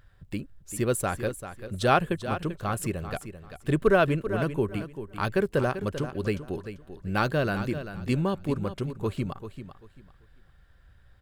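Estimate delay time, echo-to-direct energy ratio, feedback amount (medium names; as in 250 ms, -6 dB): 391 ms, -11.0 dB, 23%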